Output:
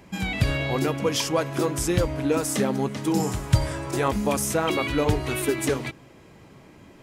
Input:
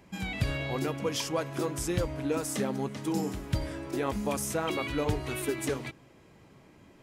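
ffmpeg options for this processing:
ffmpeg -i in.wav -filter_complex "[0:a]asettb=1/sr,asplit=3[link_01][link_02][link_03];[link_01]atrim=end=3.204[link_04];[link_02]atrim=start=3.2:end=4.08,asetpts=PTS-STARTPTS,afade=type=in:duration=0.004:curve=qsin,afade=type=out:start_time=0.876:duration=0.004:curve=qsin,equalizer=frequency=125:width_type=o:width=1:gain=7,equalizer=frequency=250:width_type=o:width=1:gain=-7,equalizer=frequency=1000:width_type=o:width=1:gain=5,equalizer=frequency=8000:width_type=o:width=1:gain=7[link_05];[link_03]atrim=start=4.076[link_06];[link_04][link_05]acrossfade=duration=0.004:curve1=hsin:curve2=qsin[link_07];[link_07][link_06]acrossfade=duration=0.004:curve1=qsin:curve2=hsin,volume=7dB" out.wav

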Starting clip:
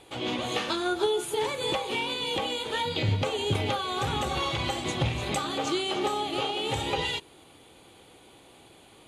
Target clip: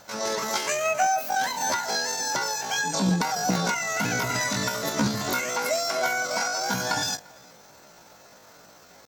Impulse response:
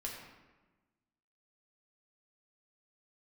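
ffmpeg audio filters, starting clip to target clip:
-filter_complex "[0:a]asplit=2[link_01][link_02];[link_02]adelay=344,volume=-26dB,highshelf=frequency=4000:gain=-7.74[link_03];[link_01][link_03]amix=inputs=2:normalize=0,asetrate=78577,aresample=44100,atempo=0.561231,volume=3dB"

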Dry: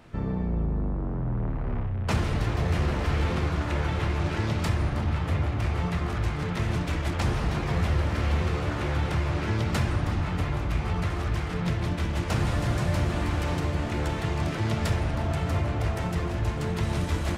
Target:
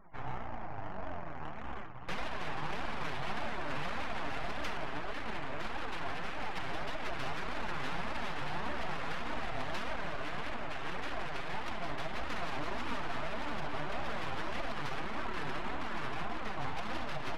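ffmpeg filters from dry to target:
ffmpeg -i in.wav -filter_complex "[0:a]afftfilt=real='re*between(b*sr/4096,280,6400)':imag='im*between(b*sr/4096,280,6400)':win_size=4096:overlap=0.75,acrossover=split=1700[link_01][link_02];[link_02]asoftclip=type=tanh:threshold=-32dB[link_03];[link_01][link_03]amix=inputs=2:normalize=0,tiltshelf=frequency=970:gain=4.5,aeval=exprs='abs(val(0))':channel_layout=same,alimiter=level_in=1dB:limit=-24dB:level=0:latency=1:release=65,volume=-1dB,afftfilt=real='re*gte(hypot(re,im),0.00178)':imag='im*gte(hypot(re,im),0.00178)':win_size=1024:overlap=0.75,highshelf=frequency=2500:gain=8,adynamicsmooth=sensitivity=7:basefreq=1900,flanger=delay=3.1:depth=4.7:regen=18:speed=1.7:shape=triangular,areverse,acompressor=mode=upward:threshold=-45dB:ratio=2.5,areverse,volume=2dB" out.wav

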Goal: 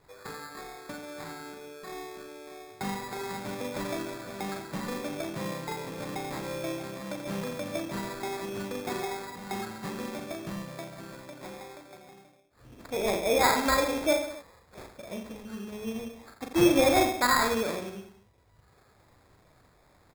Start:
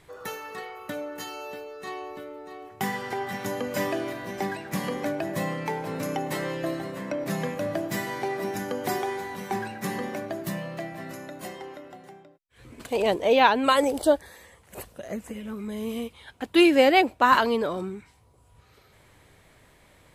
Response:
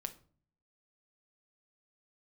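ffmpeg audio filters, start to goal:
-af "aecho=1:1:40|86|138.9|199.7|269.7:0.631|0.398|0.251|0.158|0.1,acrusher=samples=15:mix=1:aa=0.000001,volume=-6.5dB"

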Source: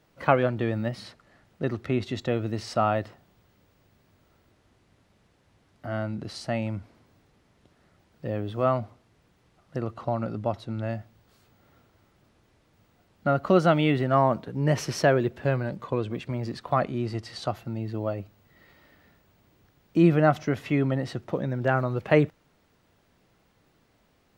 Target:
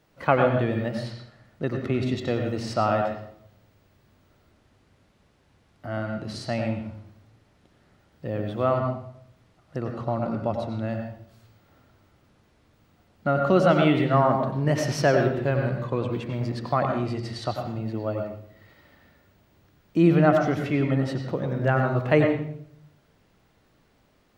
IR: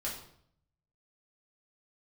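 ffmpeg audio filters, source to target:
-filter_complex "[0:a]asplit=2[link_01][link_02];[1:a]atrim=start_sample=2205,lowpass=5800,adelay=91[link_03];[link_02][link_03]afir=irnorm=-1:irlink=0,volume=-5.5dB[link_04];[link_01][link_04]amix=inputs=2:normalize=0"

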